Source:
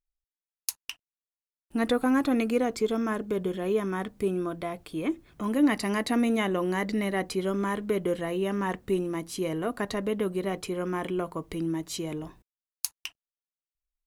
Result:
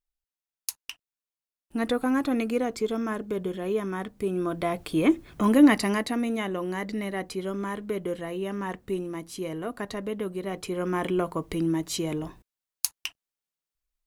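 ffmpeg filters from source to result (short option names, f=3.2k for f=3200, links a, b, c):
-af "volume=15dB,afade=t=in:st=4.28:d=0.58:silence=0.354813,afade=t=out:st=5.45:d=0.7:silence=0.281838,afade=t=in:st=10.44:d=0.63:silence=0.446684"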